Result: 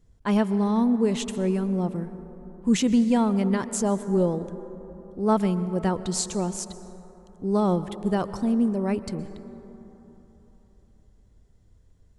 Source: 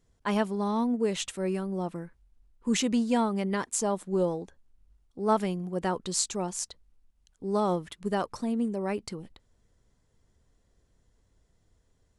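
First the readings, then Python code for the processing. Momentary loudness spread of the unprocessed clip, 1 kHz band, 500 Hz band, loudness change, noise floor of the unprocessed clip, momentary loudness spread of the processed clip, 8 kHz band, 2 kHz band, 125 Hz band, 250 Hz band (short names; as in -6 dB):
11 LU, +1.5 dB, +3.5 dB, +5.0 dB, -70 dBFS, 17 LU, 0.0 dB, +0.5 dB, +8.0 dB, +7.0 dB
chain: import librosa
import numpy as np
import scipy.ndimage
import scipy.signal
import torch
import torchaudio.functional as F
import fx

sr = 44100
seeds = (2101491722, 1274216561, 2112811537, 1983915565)

y = fx.low_shelf(x, sr, hz=280.0, db=11.0)
y = fx.rev_plate(y, sr, seeds[0], rt60_s=3.7, hf_ratio=0.3, predelay_ms=105, drr_db=13.0)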